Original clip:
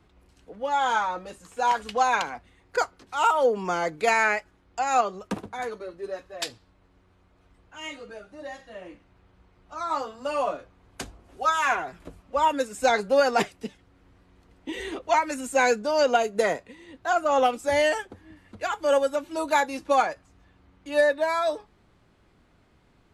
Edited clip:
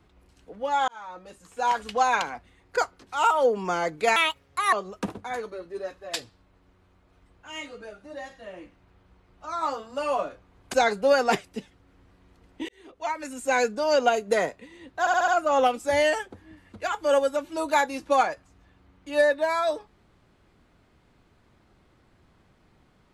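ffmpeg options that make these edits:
ffmpeg -i in.wav -filter_complex "[0:a]asplit=10[link_01][link_02][link_03][link_04][link_05][link_06][link_07][link_08][link_09][link_10];[link_01]atrim=end=0.88,asetpts=PTS-STARTPTS,afade=type=out:start_time=0.876:duration=0.004:curve=hsin[link_11];[link_02]atrim=start=0.88:end=4.164,asetpts=PTS-STARTPTS,afade=type=in:duration=1.19:curve=qsin[link_12];[link_03]atrim=start=4.16:end=5.01,asetpts=PTS-STARTPTS,asetrate=66150,aresample=44100[link_13];[link_04]atrim=start=5.006:end=11.022[link_14];[link_05]atrim=start=12.808:end=14.76,asetpts=PTS-STARTPTS,afade=type=out:start_time=1.948:duration=0.004:curve=hsin[link_15];[link_06]atrim=start=14.76:end=17.142,asetpts=PTS-STARTPTS,afade=type=in:duration=1.52:curve=qsin[link_16];[link_07]atrim=start=17.068:end=17.142[link_17];[link_08]atrim=start=17.068:end=17.142[link_18];[link_09]atrim=start=17.068:end=17.142[link_19];[link_10]atrim=start=17.068[link_20];[link_11][link_12]concat=n=2:v=0:a=1[link_21];[link_21][link_13]acrossfade=duration=0.004:curve1=hsin:curve2=hsin[link_22];[link_22][link_14]acrossfade=duration=0.004:curve1=hsin:curve2=hsin[link_23];[link_15][link_16]concat=n=2:v=0:a=1[link_24];[link_23][link_24]acrossfade=duration=0.004:curve1=hsin:curve2=hsin[link_25];[link_25][link_17]acrossfade=duration=0.004:curve1=hsin:curve2=hsin[link_26];[link_26][link_18]acrossfade=duration=0.004:curve1=hsin:curve2=hsin[link_27];[link_27][link_19]acrossfade=duration=0.004:curve1=hsin:curve2=hsin[link_28];[link_28][link_20]acrossfade=duration=0.004:curve1=hsin:curve2=hsin" out.wav

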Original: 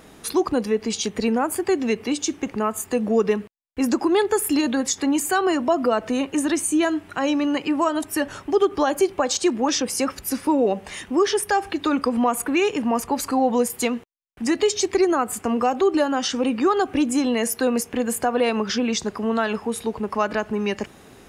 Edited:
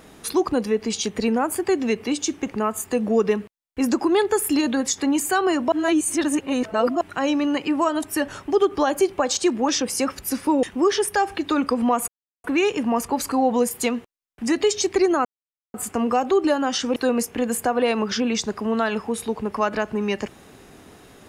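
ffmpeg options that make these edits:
ffmpeg -i in.wav -filter_complex "[0:a]asplit=7[link_01][link_02][link_03][link_04][link_05][link_06][link_07];[link_01]atrim=end=5.722[link_08];[link_02]atrim=start=5.718:end=7.012,asetpts=PTS-STARTPTS,areverse[link_09];[link_03]atrim=start=7.008:end=10.632[link_10];[link_04]atrim=start=10.978:end=12.43,asetpts=PTS-STARTPTS,afade=type=out:start_time=1.448:duration=0.004:curve=hsin,apad=pad_dur=0.36[link_11];[link_05]atrim=start=12.43:end=15.24,asetpts=PTS-STARTPTS,afade=type=in:duration=0.004:curve=hsin,afade=type=out:start_time=2.806:duration=0.004:curve=hsin,apad=pad_dur=0.49[link_12];[link_06]atrim=start=15.24:end=16.462,asetpts=PTS-STARTPTS,afade=type=in:duration=0.004:curve=hsin[link_13];[link_07]atrim=start=17.538[link_14];[link_08][link_09]acrossfade=duration=0.004:curve1=hsin:curve2=hsin[link_15];[link_15][link_10]acrossfade=duration=0.004:curve1=hsin:curve2=hsin[link_16];[link_11][link_12][link_13]concat=n=3:v=0:a=1[link_17];[link_16][link_17]acrossfade=duration=0.004:curve1=hsin:curve2=hsin[link_18];[link_18][link_14]acrossfade=duration=0.004:curve1=hsin:curve2=hsin" out.wav

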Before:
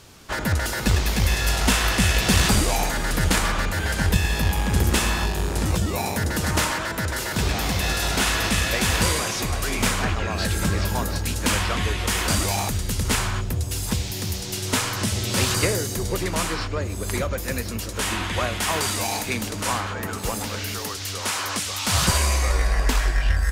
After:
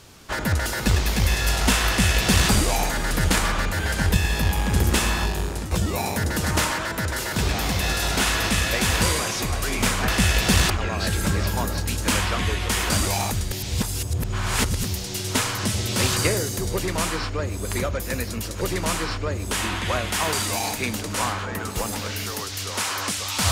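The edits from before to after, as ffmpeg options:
ffmpeg -i in.wav -filter_complex "[0:a]asplit=8[link_01][link_02][link_03][link_04][link_05][link_06][link_07][link_08];[link_01]atrim=end=5.71,asetpts=PTS-STARTPTS,afade=type=out:start_time=5.22:duration=0.49:curve=qsin:silence=0.266073[link_09];[link_02]atrim=start=5.71:end=10.082,asetpts=PTS-STARTPTS,afade=type=in:duration=0.004:curve=hsin:silence=0.266073[link_10];[link_03]atrim=start=1.878:end=2.502[link_11];[link_04]atrim=start=10.078:end=12.902[link_12];[link_05]atrim=start=12.898:end=14.222,asetpts=PTS-STARTPTS,areverse[link_13];[link_06]atrim=start=14.218:end=17.992[link_14];[link_07]atrim=start=16.108:end=17.012[link_15];[link_08]atrim=start=17.988[link_16];[link_09][link_10]concat=n=2:v=0:a=1[link_17];[link_17][link_11]acrossfade=duration=0.004:curve1=hsin:curve2=hsin[link_18];[link_18][link_12]acrossfade=duration=0.004:curve1=hsin:curve2=hsin[link_19];[link_19][link_13]acrossfade=duration=0.004:curve1=hsin:curve2=hsin[link_20];[link_20][link_14]acrossfade=duration=0.004:curve1=hsin:curve2=hsin[link_21];[link_21][link_15]acrossfade=duration=0.004:curve1=hsin:curve2=hsin[link_22];[link_22][link_16]acrossfade=duration=0.004:curve1=hsin:curve2=hsin" out.wav

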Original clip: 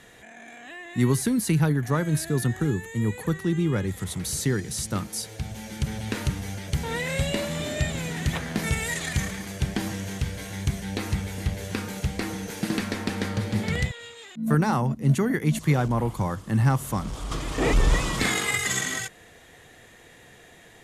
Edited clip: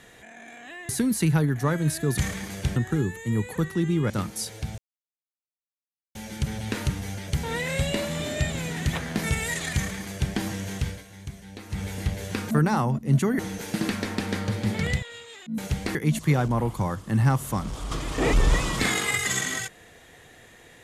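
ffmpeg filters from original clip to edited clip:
ffmpeg -i in.wav -filter_complex "[0:a]asplit=12[link_01][link_02][link_03][link_04][link_05][link_06][link_07][link_08][link_09][link_10][link_11][link_12];[link_01]atrim=end=0.892[link_13];[link_02]atrim=start=1.158:end=2.452[link_14];[link_03]atrim=start=9.148:end=9.732[link_15];[link_04]atrim=start=2.448:end=3.792[link_16];[link_05]atrim=start=4.868:end=5.55,asetpts=PTS-STARTPTS,afade=type=out:start_time=0.678:duration=0.004:curve=hsin,apad=pad_dur=1.37[link_17];[link_06]atrim=start=5.55:end=10.43,asetpts=PTS-STARTPTS,afade=type=in:duration=0.004:curve=hsin,afade=type=out:start_time=4.74:duration=0.14:silence=0.266073[link_18];[link_07]atrim=start=10.43:end=11.09,asetpts=PTS-STARTPTS,volume=-11.5dB[link_19];[link_08]atrim=start=11.09:end=11.912,asetpts=PTS-STARTPTS,afade=type=in:duration=0.14:silence=0.266073[link_20];[link_09]atrim=start=14.468:end=15.352[link_21];[link_10]atrim=start=12.278:end=14.472[link_22];[link_11]atrim=start=11.908:end=12.282[link_23];[link_12]atrim=start=15.348[link_24];[link_13][link_14]acrossfade=duration=0.004:curve1=hsin:curve2=hsin[link_25];[link_25][link_15]acrossfade=duration=0.004:curve1=hsin:curve2=hsin[link_26];[link_26][link_16]acrossfade=duration=0.004:curve1=hsin:curve2=hsin[link_27];[link_17][link_18][link_19][link_20]concat=n=4:v=0:a=1[link_28];[link_27][link_28]acrossfade=duration=0.004:curve1=hsin:curve2=hsin[link_29];[link_29][link_21]acrossfade=duration=0.004:curve1=hsin:curve2=hsin[link_30];[link_30][link_22]acrossfade=duration=0.004:curve1=hsin:curve2=hsin[link_31];[link_31][link_23]acrossfade=duration=0.004:curve1=hsin:curve2=hsin[link_32];[link_32][link_24]acrossfade=duration=0.004:curve1=hsin:curve2=hsin" out.wav

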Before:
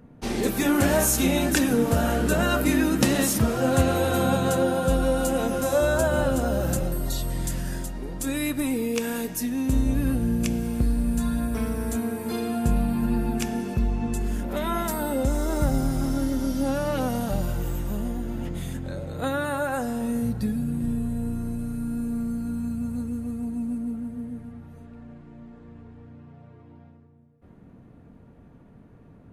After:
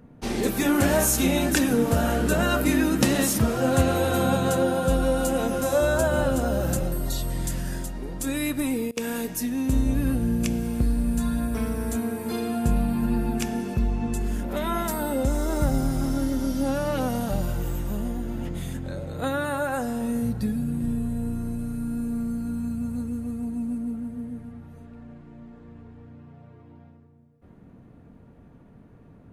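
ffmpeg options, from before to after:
ffmpeg -i in.wav -filter_complex "[0:a]asplit=3[link_01][link_02][link_03];[link_01]atrim=end=8.91,asetpts=PTS-STARTPTS,afade=type=out:start_time=8.67:duration=0.24:curve=log:silence=0.0630957[link_04];[link_02]atrim=start=8.91:end=8.97,asetpts=PTS-STARTPTS,volume=-24dB[link_05];[link_03]atrim=start=8.97,asetpts=PTS-STARTPTS,afade=type=in:duration=0.24:curve=log:silence=0.0630957[link_06];[link_04][link_05][link_06]concat=n=3:v=0:a=1" out.wav

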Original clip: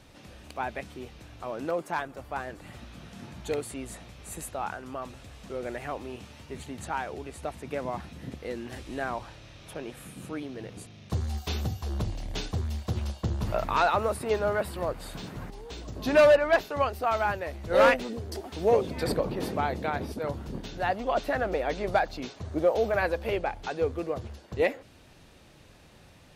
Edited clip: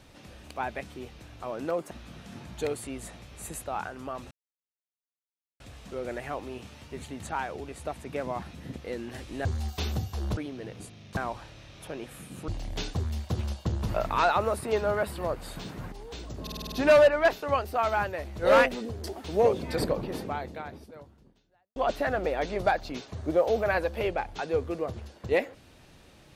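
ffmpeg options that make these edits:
ffmpeg -i in.wav -filter_complex "[0:a]asplit=14[link_01][link_02][link_03][link_04][link_05][link_06][link_07][link_08][link_09][link_10][link_11][link_12][link_13][link_14];[link_01]atrim=end=1.912[link_15];[link_02]atrim=start=2.778:end=5.18,asetpts=PTS-STARTPTS,afade=type=out:start_time=2.398:duration=0.004:curve=hsin,apad=pad_dur=1.29[link_16];[link_03]atrim=start=5.18:end=9.032,asetpts=PTS-STARTPTS,afade=type=in:duration=0.004:curve=hsin[link_17];[link_04]atrim=start=11.138:end=12.062[link_18];[link_05]atrim=start=10.338:end=11.142[link_19];[link_06]atrim=start=9.028:end=10.342[link_20];[link_07]atrim=start=12.058:end=16.052[link_21];[link_08]atrim=start=15.998:end=16.052[link_22];[link_09]atrim=start=15.998:end=16.052[link_23];[link_10]atrim=start=15.998:end=16.052[link_24];[link_11]atrim=start=15.998:end=16.052[link_25];[link_12]atrim=start=15.998:end=16.052[link_26];[link_13]atrim=start=15.998:end=21.04,asetpts=PTS-STARTPTS,afade=type=out:start_time=3.142:duration=1.9:curve=qua[link_27];[link_14]atrim=start=21.04,asetpts=PTS-STARTPTS,afade=type=in:duration=0.004:curve=hsin[link_28];[link_16][link_17]concat=n=2:v=0:a=1[link_29];[link_15][link_29]acrossfade=duration=0.004:curve1=hsin:curve2=hsin[link_30];[link_30][link_18]acrossfade=duration=0.004:curve1=hsin:curve2=hsin[link_31];[link_31][link_19]acrossfade=duration=0.004:curve1=hsin:curve2=hsin[link_32];[link_32][link_20]acrossfade=duration=0.004:curve1=hsin:curve2=hsin[link_33];[link_33][link_21]acrossfade=duration=0.004:curve1=hsin:curve2=hsin[link_34];[link_34][link_22]acrossfade=duration=0.004:curve1=hsin:curve2=hsin[link_35];[link_35][link_23]acrossfade=duration=0.004:curve1=hsin:curve2=hsin[link_36];[link_36][link_24]acrossfade=duration=0.004:curve1=hsin:curve2=hsin[link_37];[link_37][link_25]acrossfade=duration=0.004:curve1=hsin:curve2=hsin[link_38];[link_38][link_26]acrossfade=duration=0.004:curve1=hsin:curve2=hsin[link_39];[link_27][link_28]concat=n=2:v=0:a=1[link_40];[link_39][link_40]acrossfade=duration=0.004:curve1=hsin:curve2=hsin" out.wav

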